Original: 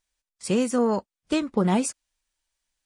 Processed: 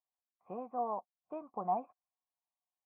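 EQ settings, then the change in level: vocal tract filter a; HPF 110 Hz; air absorption 410 m; +3.0 dB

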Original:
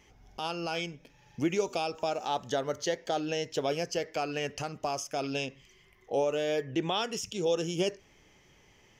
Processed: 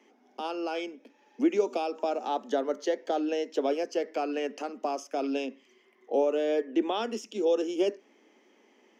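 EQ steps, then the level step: steep high-pass 220 Hz 96 dB/oct; tilt -3 dB/oct; 0.0 dB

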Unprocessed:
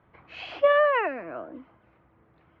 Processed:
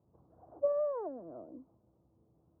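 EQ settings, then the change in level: Gaussian blur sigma 12 samples; HPF 57 Hz; -6.0 dB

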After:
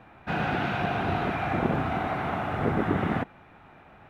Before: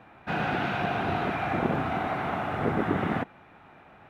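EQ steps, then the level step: low shelf 85 Hz +8.5 dB; 0.0 dB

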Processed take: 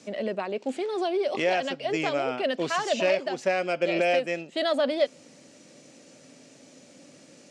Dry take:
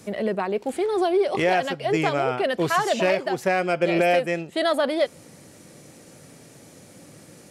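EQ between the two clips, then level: speaker cabinet 160–7100 Hz, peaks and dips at 260 Hz +9 dB, 580 Hz +7 dB, 2700 Hz +4 dB; high shelf 2900 Hz +9 dB; -8.0 dB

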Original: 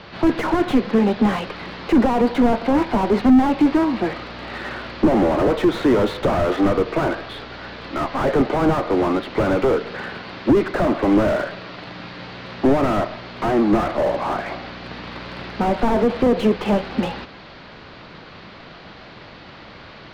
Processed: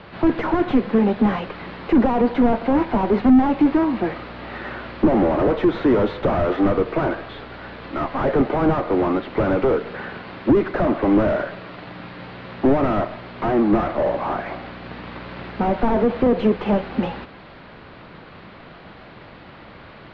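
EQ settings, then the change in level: air absorption 260 m; 0.0 dB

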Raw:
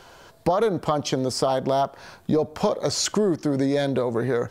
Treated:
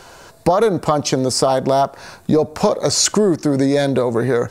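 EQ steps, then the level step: bell 8500 Hz +5.5 dB 1 oct; notch 3200 Hz, Q 10; +6.5 dB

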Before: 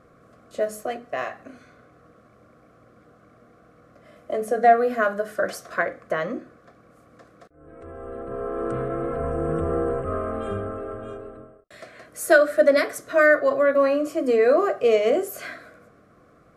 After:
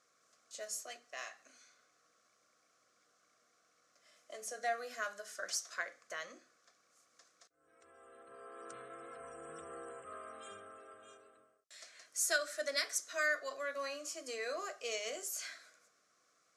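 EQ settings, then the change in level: band-pass 6200 Hz, Q 2.4; +5.5 dB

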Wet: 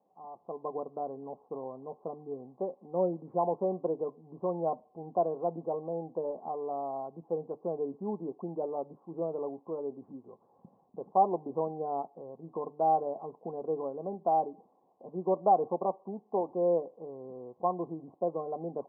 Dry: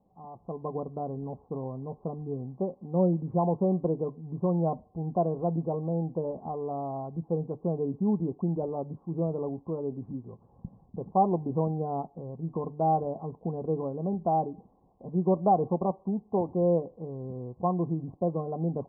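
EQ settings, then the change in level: HPF 430 Hz 12 dB/oct; air absorption 380 m; +1.5 dB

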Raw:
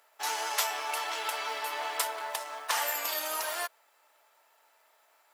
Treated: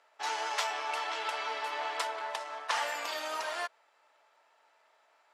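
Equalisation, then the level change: air absorption 97 m; 0.0 dB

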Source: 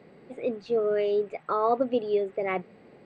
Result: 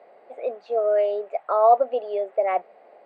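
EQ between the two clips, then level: resonant high-pass 660 Hz, resonance Q 4.4; high shelf 3900 Hz -12 dB; 0.0 dB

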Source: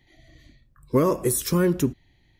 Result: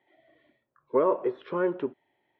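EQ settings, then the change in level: air absorption 450 m; speaker cabinet 380–3600 Hz, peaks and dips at 410 Hz +7 dB, 590 Hz +6 dB, 930 Hz +8 dB, 1400 Hz +5 dB, 3300 Hz +4 dB; bell 730 Hz +2.5 dB; -5.0 dB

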